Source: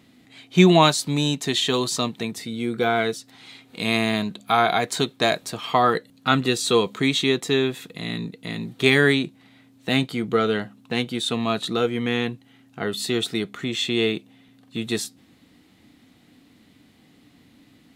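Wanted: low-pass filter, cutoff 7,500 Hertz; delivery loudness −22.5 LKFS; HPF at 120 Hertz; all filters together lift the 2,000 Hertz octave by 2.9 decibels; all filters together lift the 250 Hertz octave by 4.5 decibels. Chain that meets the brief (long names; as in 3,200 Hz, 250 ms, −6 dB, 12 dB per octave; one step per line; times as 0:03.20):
high-pass filter 120 Hz
low-pass filter 7,500 Hz
parametric band 250 Hz +6 dB
parametric band 2,000 Hz +3.5 dB
level −2.5 dB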